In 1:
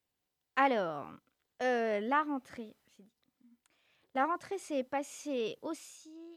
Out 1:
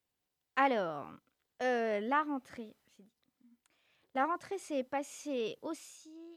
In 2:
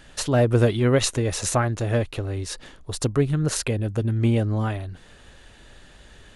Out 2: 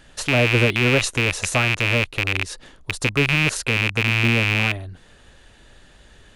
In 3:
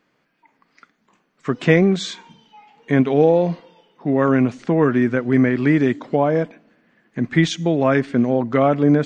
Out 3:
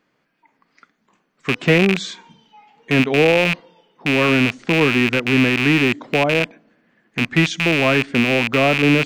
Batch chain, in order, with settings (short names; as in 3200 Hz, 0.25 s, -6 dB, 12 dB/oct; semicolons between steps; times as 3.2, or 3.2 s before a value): rattling part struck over -26 dBFS, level -6 dBFS; gain -1 dB